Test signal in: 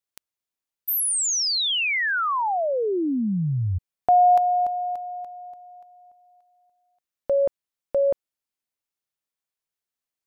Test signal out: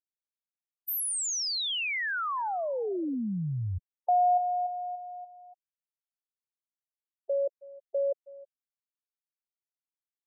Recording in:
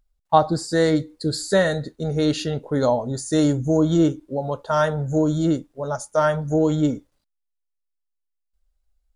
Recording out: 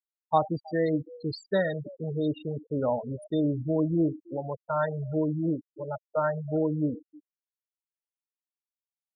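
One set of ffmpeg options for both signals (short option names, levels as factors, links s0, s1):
-filter_complex "[0:a]asplit=2[s0][s1];[s1]adelay=320,highpass=300,lowpass=3400,asoftclip=type=hard:threshold=0.251,volume=0.141[s2];[s0][s2]amix=inputs=2:normalize=0,afftfilt=real='re*gte(hypot(re,im),0.126)':imag='im*gte(hypot(re,im),0.126)':win_size=1024:overlap=0.75,volume=0.422"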